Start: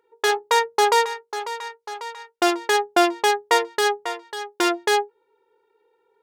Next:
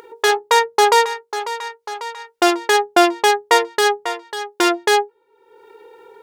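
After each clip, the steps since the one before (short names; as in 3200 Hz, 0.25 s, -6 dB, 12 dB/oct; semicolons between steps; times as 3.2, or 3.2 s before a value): upward compressor, threshold -33 dBFS; gain +4.5 dB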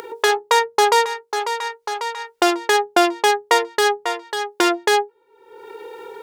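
three-band squash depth 40%; gain -1.5 dB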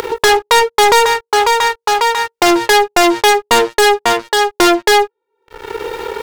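sample leveller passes 5; gain -4 dB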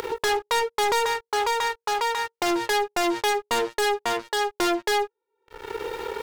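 limiter -11 dBFS, peak gain reduction 5.5 dB; gain -8.5 dB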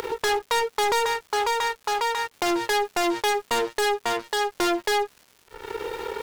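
crackle 380/s -41 dBFS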